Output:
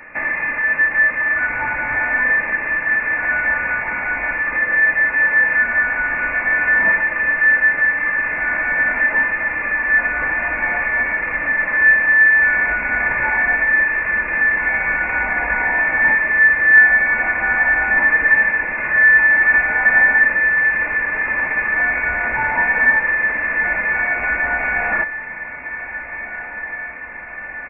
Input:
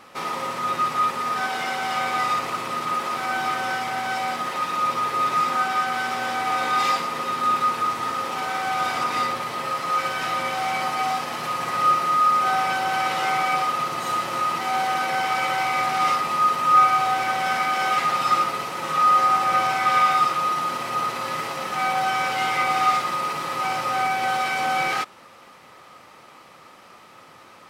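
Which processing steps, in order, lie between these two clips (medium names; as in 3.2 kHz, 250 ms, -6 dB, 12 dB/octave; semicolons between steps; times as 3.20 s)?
high-pass 750 Hz 12 dB/octave; comb 3.3 ms, depth 53%; in parallel at +1.5 dB: compression, threshold -32 dBFS, peak gain reduction 20.5 dB; on the sum: echo that smears into a reverb 1635 ms, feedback 71%, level -13.5 dB; frequency inversion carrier 3 kHz; trim +2.5 dB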